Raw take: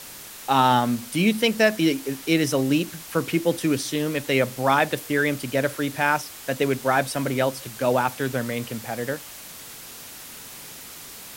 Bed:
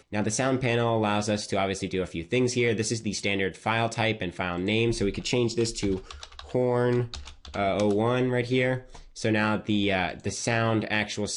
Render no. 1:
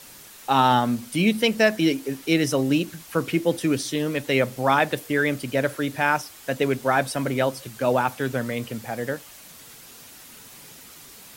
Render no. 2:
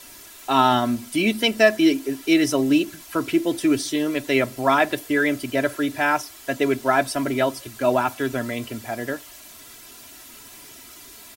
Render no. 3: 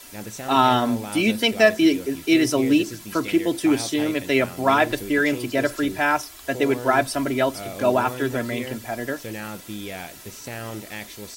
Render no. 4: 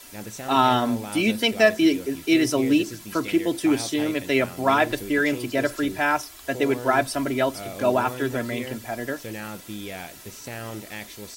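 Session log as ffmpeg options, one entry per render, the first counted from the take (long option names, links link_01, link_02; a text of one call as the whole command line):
ffmpeg -i in.wav -af "afftdn=noise_reduction=6:noise_floor=-41" out.wav
ffmpeg -i in.wav -af "aecho=1:1:3:0.69" out.wav
ffmpeg -i in.wav -i bed.wav -filter_complex "[1:a]volume=-9dB[link_01];[0:a][link_01]amix=inputs=2:normalize=0" out.wav
ffmpeg -i in.wav -af "volume=-1.5dB" out.wav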